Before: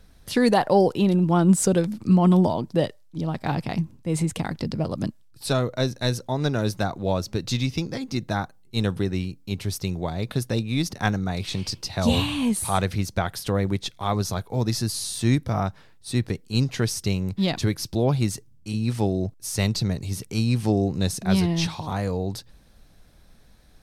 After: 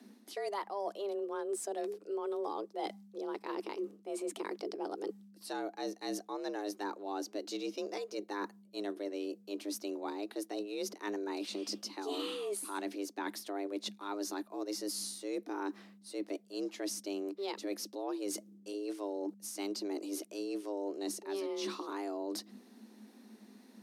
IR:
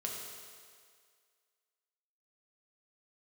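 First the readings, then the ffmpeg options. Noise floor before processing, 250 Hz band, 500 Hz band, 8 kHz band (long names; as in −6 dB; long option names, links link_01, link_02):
−52 dBFS, −16.0 dB, −11.0 dB, −11.5 dB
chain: -af "afreqshift=200,areverse,acompressor=threshold=-32dB:ratio=6,areverse,volume=-4dB"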